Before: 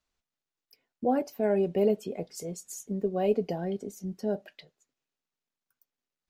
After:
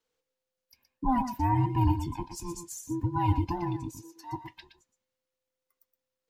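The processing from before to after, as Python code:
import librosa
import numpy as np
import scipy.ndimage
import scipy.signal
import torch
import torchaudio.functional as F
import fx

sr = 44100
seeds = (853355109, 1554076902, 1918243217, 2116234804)

p1 = fx.band_invert(x, sr, width_hz=500)
p2 = fx.highpass(p1, sr, hz=fx.line((3.9, 520.0), (4.32, 1400.0)), slope=12, at=(3.9, 4.32), fade=0.02)
y = p2 + fx.echo_single(p2, sr, ms=120, db=-9.0, dry=0)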